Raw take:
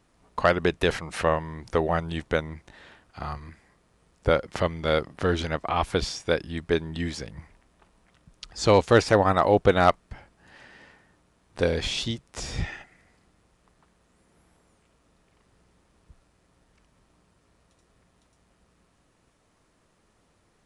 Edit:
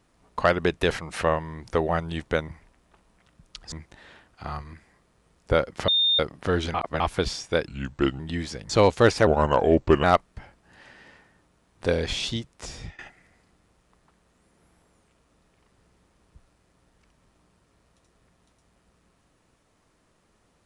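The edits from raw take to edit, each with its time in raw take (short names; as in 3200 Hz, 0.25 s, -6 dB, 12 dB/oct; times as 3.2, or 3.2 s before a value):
4.64–4.95 bleep 3640 Hz -18 dBFS
5.5–5.76 reverse
6.43–6.86 speed 82%
7.36–8.6 move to 2.48
9.17–9.78 speed 79%
12.25–12.73 fade out, to -21 dB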